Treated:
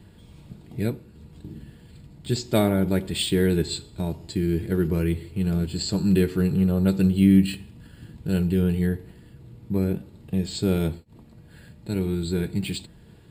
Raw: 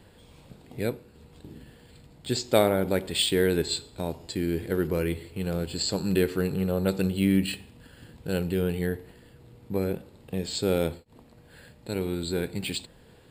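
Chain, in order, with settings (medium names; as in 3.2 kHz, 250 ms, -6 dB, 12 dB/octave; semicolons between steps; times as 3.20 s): resonant low shelf 350 Hz +6.5 dB, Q 1.5; comb of notches 260 Hz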